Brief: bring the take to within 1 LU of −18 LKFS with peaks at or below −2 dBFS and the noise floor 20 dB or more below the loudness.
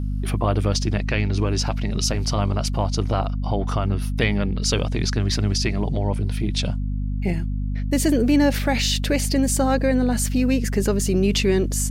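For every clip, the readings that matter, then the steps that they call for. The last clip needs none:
mains hum 50 Hz; hum harmonics up to 250 Hz; level of the hum −22 dBFS; integrated loudness −22.0 LKFS; sample peak −7.0 dBFS; target loudness −18.0 LKFS
→ mains-hum notches 50/100/150/200/250 Hz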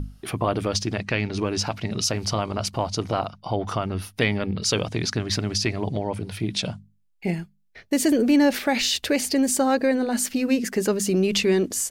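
mains hum none found; integrated loudness −24.0 LKFS; sample peak −8.5 dBFS; target loudness −18.0 LKFS
→ level +6 dB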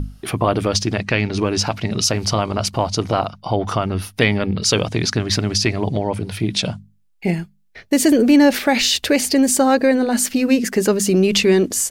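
integrated loudness −18.0 LKFS; sample peak −2.5 dBFS; background noise floor −55 dBFS

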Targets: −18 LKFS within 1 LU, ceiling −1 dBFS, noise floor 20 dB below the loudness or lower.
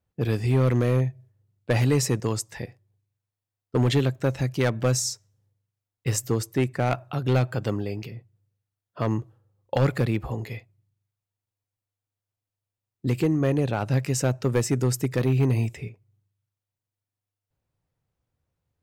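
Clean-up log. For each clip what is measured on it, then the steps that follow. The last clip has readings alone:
share of clipped samples 0.7%; peaks flattened at −14.5 dBFS; integrated loudness −25.5 LKFS; sample peak −14.5 dBFS; target loudness −18.0 LKFS
→ clipped peaks rebuilt −14.5 dBFS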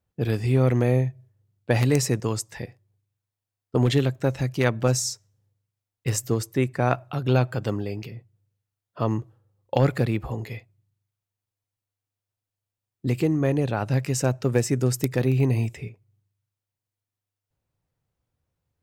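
share of clipped samples 0.0%; integrated loudness −24.5 LKFS; sample peak −5.5 dBFS; target loudness −18.0 LKFS
→ level +6.5 dB
brickwall limiter −1 dBFS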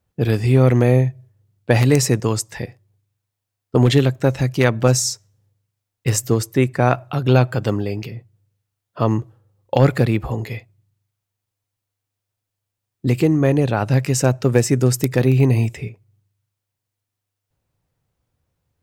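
integrated loudness −18.0 LKFS; sample peak −1.0 dBFS; background noise floor −82 dBFS

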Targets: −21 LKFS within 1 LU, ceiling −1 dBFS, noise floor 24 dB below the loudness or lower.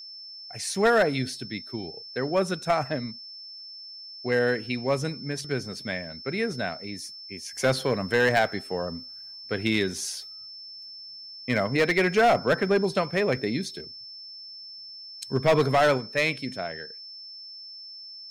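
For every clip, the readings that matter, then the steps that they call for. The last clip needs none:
share of clipped samples 0.8%; peaks flattened at −15.0 dBFS; interfering tone 5,300 Hz; level of the tone −40 dBFS; integrated loudness −26.0 LKFS; sample peak −15.0 dBFS; target loudness −21.0 LKFS
→ clipped peaks rebuilt −15 dBFS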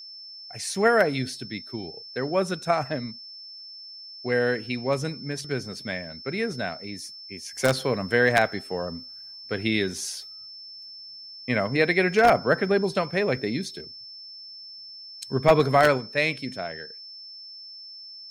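share of clipped samples 0.0%; interfering tone 5,300 Hz; level of the tone −40 dBFS
→ notch filter 5,300 Hz, Q 30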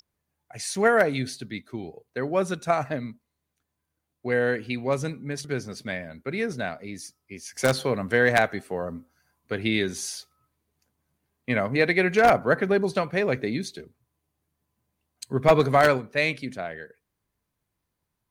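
interfering tone none found; integrated loudness −25.0 LKFS; sample peak −5.5 dBFS; target loudness −21.0 LKFS
→ level +4 dB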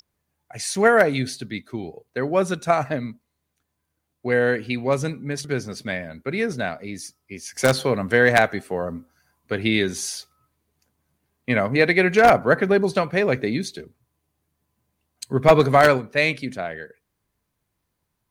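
integrated loudness −21.0 LKFS; sample peak −1.5 dBFS; background noise floor −77 dBFS

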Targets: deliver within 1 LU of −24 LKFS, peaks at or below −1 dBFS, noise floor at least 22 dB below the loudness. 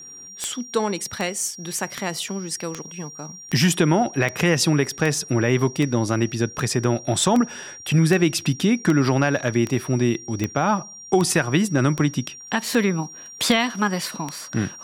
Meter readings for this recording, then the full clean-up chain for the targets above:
number of clicks 19; interfering tone 5,700 Hz; level of the tone −38 dBFS; integrated loudness −22.0 LKFS; sample peak −5.5 dBFS; target loudness −24.0 LKFS
→ click removal
notch filter 5,700 Hz, Q 30
level −2 dB

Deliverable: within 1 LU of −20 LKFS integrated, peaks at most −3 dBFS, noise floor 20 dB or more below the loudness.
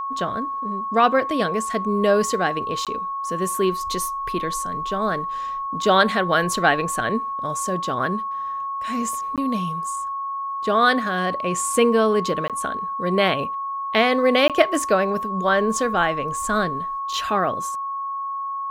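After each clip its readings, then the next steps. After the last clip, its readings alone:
number of dropouts 4; longest dropout 17 ms; interfering tone 1,100 Hz; level of the tone −25 dBFS; integrated loudness −22.0 LKFS; sample peak −1.5 dBFS; target loudness −20.0 LKFS
→ repair the gap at 0:02.85/0:09.36/0:12.48/0:14.48, 17 ms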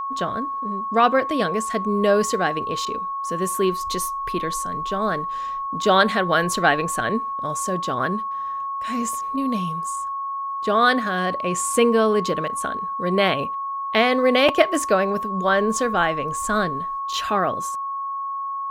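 number of dropouts 0; interfering tone 1,100 Hz; level of the tone −25 dBFS
→ notch filter 1,100 Hz, Q 30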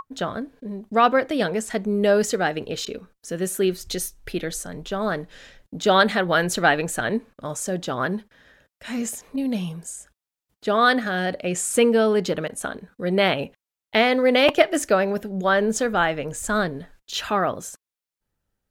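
interfering tone none found; integrated loudness −22.5 LKFS; sample peak −2.0 dBFS; target loudness −20.0 LKFS
→ level +2.5 dB
brickwall limiter −3 dBFS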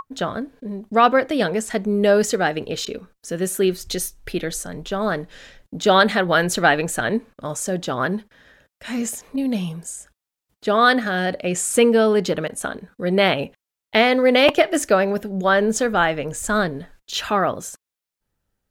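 integrated loudness −20.0 LKFS; sample peak −3.0 dBFS; background noise floor −87 dBFS

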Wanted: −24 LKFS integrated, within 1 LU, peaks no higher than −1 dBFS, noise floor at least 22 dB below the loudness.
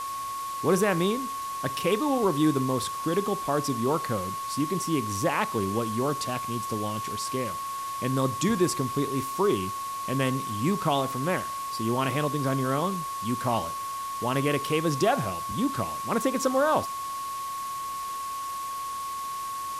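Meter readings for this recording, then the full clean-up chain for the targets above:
interfering tone 1,100 Hz; level of the tone −31 dBFS; background noise floor −34 dBFS; target noise floor −50 dBFS; integrated loudness −28.0 LKFS; sample peak −11.0 dBFS; target loudness −24.0 LKFS
→ notch filter 1,100 Hz, Q 30
noise reduction from a noise print 16 dB
level +4 dB

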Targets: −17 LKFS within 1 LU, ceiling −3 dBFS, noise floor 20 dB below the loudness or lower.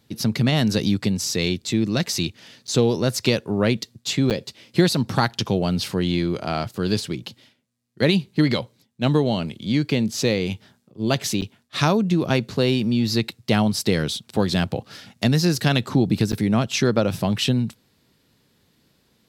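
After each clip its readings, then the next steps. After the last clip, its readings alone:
number of dropouts 4; longest dropout 8.4 ms; integrated loudness −22.0 LKFS; sample peak −3.5 dBFS; target loudness −17.0 LKFS
→ repair the gap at 0:02.67/0:04.30/0:11.41/0:16.32, 8.4 ms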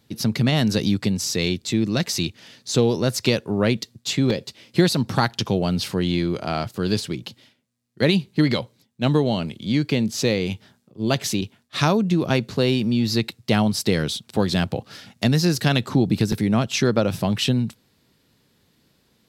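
number of dropouts 0; integrated loudness −22.0 LKFS; sample peak −3.5 dBFS; target loudness −17.0 LKFS
→ level +5 dB
brickwall limiter −3 dBFS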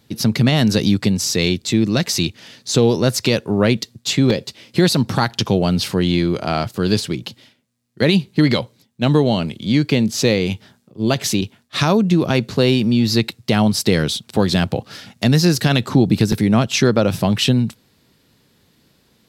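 integrated loudness −17.5 LKFS; sample peak −3.0 dBFS; background noise floor −59 dBFS

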